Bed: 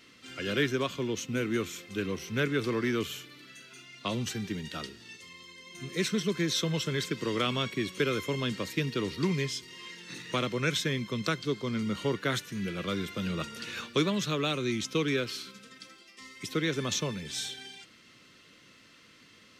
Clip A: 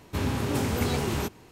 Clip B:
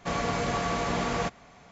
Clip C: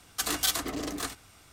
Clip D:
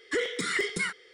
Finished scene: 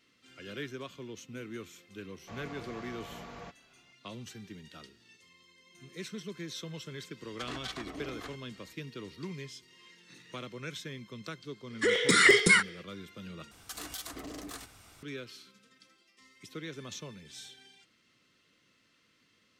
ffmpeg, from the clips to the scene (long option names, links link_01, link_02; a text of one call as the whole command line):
ffmpeg -i bed.wav -i cue0.wav -i cue1.wav -i cue2.wav -i cue3.wav -filter_complex "[3:a]asplit=2[link_01][link_02];[0:a]volume=-12dB[link_03];[2:a]acrossover=split=6000[link_04][link_05];[link_05]acompressor=threshold=-57dB:ratio=4:attack=1:release=60[link_06];[link_04][link_06]amix=inputs=2:normalize=0[link_07];[link_01]lowpass=3500[link_08];[4:a]dynaudnorm=framelen=110:gausssize=5:maxgain=10dB[link_09];[link_02]acompressor=threshold=-41dB:ratio=3:attack=2.5:release=136:knee=1:detection=peak[link_10];[link_03]asplit=2[link_11][link_12];[link_11]atrim=end=13.514[link_13];[link_10]atrim=end=1.52,asetpts=PTS-STARTPTS,volume=-0.5dB[link_14];[link_12]atrim=start=15.026[link_15];[link_07]atrim=end=1.71,asetpts=PTS-STARTPTS,volume=-17.5dB,afade=type=in:duration=0.004:curve=hsin,afade=type=out:start_time=1.706:duration=0.004:curve=hsin,adelay=2220[link_16];[link_08]atrim=end=1.52,asetpts=PTS-STARTPTS,volume=-8.5dB,afade=type=in:duration=0.004:curve=hsin,afade=type=out:start_time=1.516:duration=0.004:curve=hsin,adelay=7210[link_17];[link_09]atrim=end=1.13,asetpts=PTS-STARTPTS,volume=-1.5dB,afade=type=in:duration=0.004:curve=hsin,afade=type=out:start_time=1.126:duration=0.004:curve=hsin,adelay=515970S[link_18];[link_13][link_14]acrossfade=duration=0.004:curve1=hsin:curve2=hsin[link_19];[link_19][link_15]acrossfade=duration=0.004:curve1=hsin:curve2=hsin[link_20];[link_20][link_16][link_17][link_18]amix=inputs=4:normalize=0" out.wav